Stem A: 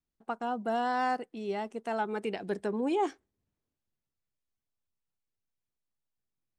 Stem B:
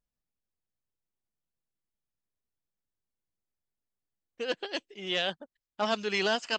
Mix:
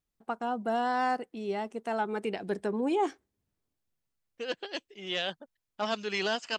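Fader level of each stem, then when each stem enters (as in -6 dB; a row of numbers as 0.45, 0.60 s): +1.0, -2.5 dB; 0.00, 0.00 s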